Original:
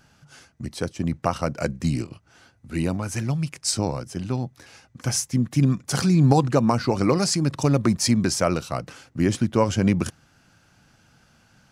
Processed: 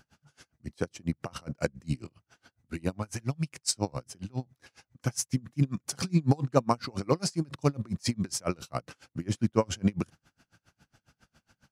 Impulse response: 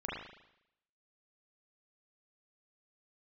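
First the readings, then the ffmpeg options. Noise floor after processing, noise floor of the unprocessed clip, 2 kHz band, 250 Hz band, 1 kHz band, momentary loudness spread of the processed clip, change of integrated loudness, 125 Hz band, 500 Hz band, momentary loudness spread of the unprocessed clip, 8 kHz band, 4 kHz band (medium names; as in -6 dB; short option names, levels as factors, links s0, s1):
under -85 dBFS, -60 dBFS, -9.0 dB, -9.0 dB, -8.0 dB, 12 LU, -8.0 dB, -8.0 dB, -7.5 dB, 12 LU, -7.5 dB, -8.0 dB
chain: -af "aeval=exprs='val(0)*pow(10,-32*(0.5-0.5*cos(2*PI*7.3*n/s))/20)':c=same,volume=0.841"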